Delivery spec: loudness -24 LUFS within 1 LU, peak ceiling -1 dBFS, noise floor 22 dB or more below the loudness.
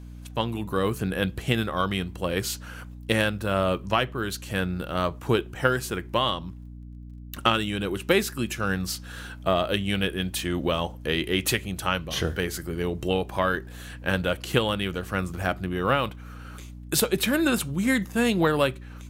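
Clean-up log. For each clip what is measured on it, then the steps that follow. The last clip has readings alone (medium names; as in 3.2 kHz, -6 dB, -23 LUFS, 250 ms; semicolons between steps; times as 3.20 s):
tick rate 16 per s; hum 60 Hz; highest harmonic 300 Hz; hum level -39 dBFS; loudness -26.5 LUFS; peak level -6.5 dBFS; loudness target -24.0 LUFS
-> de-click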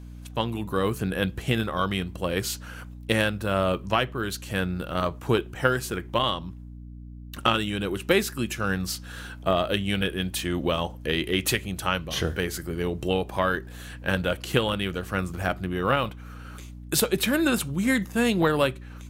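tick rate 0.73 per s; hum 60 Hz; highest harmonic 300 Hz; hum level -39 dBFS
-> hum notches 60/120/180/240/300 Hz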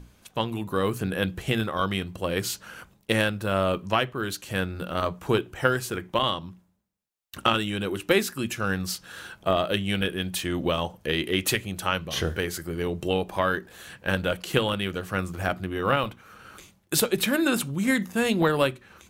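hum not found; loudness -26.5 LUFS; peak level -6.5 dBFS; loudness target -24.0 LUFS
-> trim +2.5 dB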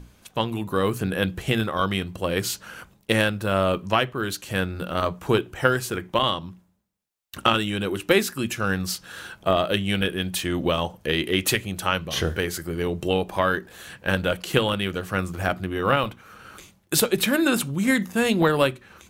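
loudness -24.0 LUFS; peak level -4.0 dBFS; noise floor -59 dBFS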